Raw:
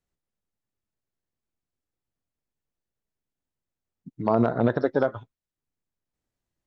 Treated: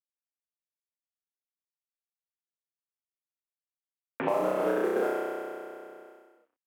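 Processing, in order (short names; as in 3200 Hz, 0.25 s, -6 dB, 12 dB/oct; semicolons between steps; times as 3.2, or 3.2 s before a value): level-crossing sampler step -30.5 dBFS; mistuned SSB -52 Hz 370–3000 Hz; modulation noise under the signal 27 dB; low-pass opened by the level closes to 2000 Hz, open at -24 dBFS; compressor 2:1, threshold -33 dBFS, peak gain reduction 8.5 dB; flutter echo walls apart 5.5 m, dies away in 1.4 s; three-band squash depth 70%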